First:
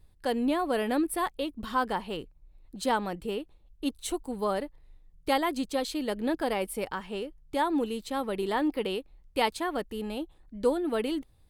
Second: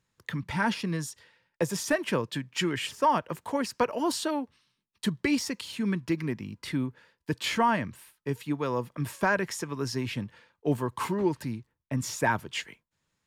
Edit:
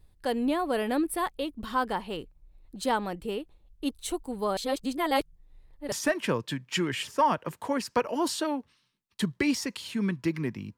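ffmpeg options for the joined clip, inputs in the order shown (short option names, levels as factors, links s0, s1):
-filter_complex "[0:a]apad=whole_dur=10.77,atrim=end=10.77,asplit=2[s0][s1];[s0]atrim=end=4.572[s2];[s1]atrim=start=4.568:end=5.922,asetpts=PTS-STARTPTS,areverse[s3];[1:a]atrim=start=1.758:end=6.61[s4];[s2][s3]acrossfade=d=0.004:c1=hsin:c2=hsin[s5];[s5][s4]acrossfade=d=0.004:c1=hsin:c2=hsin"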